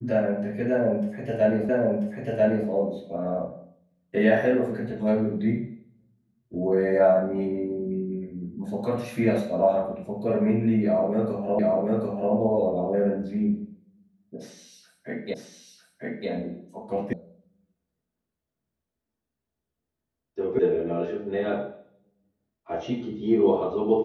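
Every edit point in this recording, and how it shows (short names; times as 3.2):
1.69 repeat of the last 0.99 s
11.59 repeat of the last 0.74 s
15.34 repeat of the last 0.95 s
17.13 sound cut off
20.59 sound cut off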